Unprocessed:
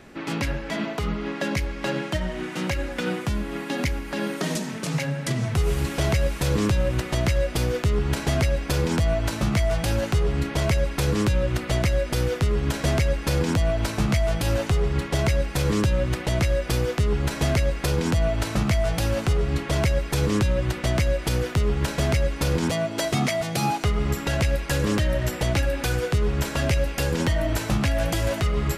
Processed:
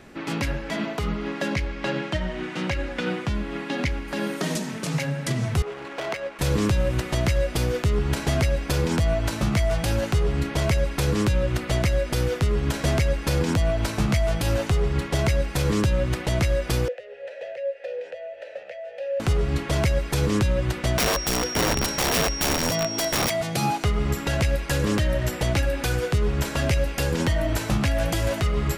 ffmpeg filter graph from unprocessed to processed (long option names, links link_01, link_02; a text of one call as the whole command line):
ffmpeg -i in.wav -filter_complex "[0:a]asettb=1/sr,asplit=3[link_01][link_02][link_03];[link_01]atrim=end=1.544[link_04];[link_02]atrim=start=1.54:end=4.08,asetpts=PTS-STARTPTS,afade=type=in:duration=0.004:curve=qsin,afade=type=out:start_time=2.536:duration=0.004:curve=qsin,lowpass=3500,aemphasis=mode=production:type=50fm[link_05];[link_03]atrim=start=4.076[link_06];[link_04][link_05]acrossfade=duration=0.004:curve1=hsin:curve2=qsin[link_07];[link_07][link_06]acrossfade=duration=0.004:curve1=qsin:curve2=hsin,asettb=1/sr,asplit=3[link_08][link_09][link_10];[link_08]atrim=end=5.624[link_11];[link_09]atrim=start=5.62:end=6.39,asetpts=PTS-STARTPTS,afade=type=in:duration=0.004:curve=qsin,afade=type=out:start_time=0.766:duration=0.004:curve=qsin,highpass=480,adynamicsmooth=sensitivity=2.5:basefreq=1600[link_12];[link_10]atrim=start=6.386[link_13];[link_11][link_12]acrossfade=duration=0.004:curve1=hsin:curve2=qsin[link_14];[link_14][link_13]acrossfade=duration=0.004:curve1=qsin:curve2=hsin,asettb=1/sr,asplit=3[link_15][link_16][link_17];[link_15]atrim=end=16.884[link_18];[link_16]atrim=start=16.88:end=19.2,asetpts=PTS-STARTPTS,afade=type=in:duration=0.004:curve=qsin,afade=type=out:start_time=2.316:duration=0.004:curve=qsin,lowshelf=frequency=390:width_type=q:width=3:gain=-13,acrossover=split=210|6200[link_19][link_20][link_21];[link_19]acompressor=threshold=-40dB:ratio=4[link_22];[link_20]acompressor=threshold=-22dB:ratio=4[link_23];[link_21]acompressor=threshold=-44dB:ratio=4[link_24];[link_22][link_23][link_24]amix=inputs=3:normalize=0,asplit=3[link_25][link_26][link_27];[link_25]bandpass=frequency=530:width_type=q:width=8,volume=0dB[link_28];[link_26]bandpass=frequency=1840:width_type=q:width=8,volume=-6dB[link_29];[link_27]bandpass=frequency=2480:width_type=q:width=8,volume=-9dB[link_30];[link_28][link_29][link_30]amix=inputs=3:normalize=0[link_31];[link_17]atrim=start=19.196[link_32];[link_18][link_31]acrossfade=duration=0.004:curve1=hsin:curve2=qsin[link_33];[link_33][link_32]acrossfade=duration=0.004:curve1=qsin:curve2=hsin,asettb=1/sr,asplit=3[link_34][link_35][link_36];[link_34]atrim=end=20.984[link_37];[link_35]atrim=start=20.98:end=23.3,asetpts=PTS-STARTPTS,afade=type=in:duration=0.004:curve=qsin,afade=type=out:start_time=2.316:duration=0.004:curve=qsin,aeval=exprs='(mod(7.94*val(0)+1,2)-1)/7.94':channel_layout=same,aeval=exprs='val(0)+0.0316*sin(2*PI*5600*n/s)':channel_layout=same[link_38];[link_36]atrim=start=23.296[link_39];[link_37][link_38]acrossfade=duration=0.004:curve1=hsin:curve2=qsin[link_40];[link_40][link_39]acrossfade=duration=0.004:curve1=qsin:curve2=hsin" out.wav